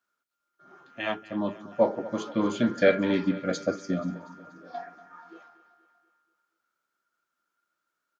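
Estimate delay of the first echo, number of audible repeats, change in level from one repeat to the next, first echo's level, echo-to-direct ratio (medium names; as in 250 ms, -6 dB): 240 ms, 4, -5.5 dB, -17.5 dB, -16.0 dB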